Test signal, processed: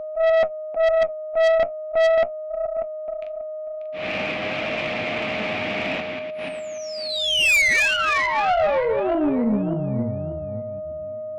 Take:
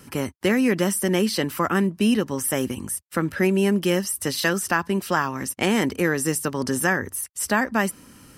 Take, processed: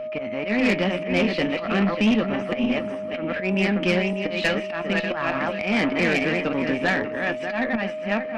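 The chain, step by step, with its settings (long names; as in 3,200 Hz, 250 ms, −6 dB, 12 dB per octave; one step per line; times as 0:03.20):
feedback delay that plays each chunk backwards 295 ms, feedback 48%, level −5.5 dB
volume swells 141 ms
flanger 0.4 Hz, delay 8.2 ms, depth 3.2 ms, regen +64%
loudspeaker in its box 220–3,100 Hz, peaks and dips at 240 Hz +3 dB, 390 Hz −7 dB, 680 Hz +4 dB, 980 Hz −7 dB, 1,500 Hz −6 dB, 2,400 Hz +10 dB
steady tone 620 Hz −36 dBFS
tube saturation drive 23 dB, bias 0.35
level +8.5 dB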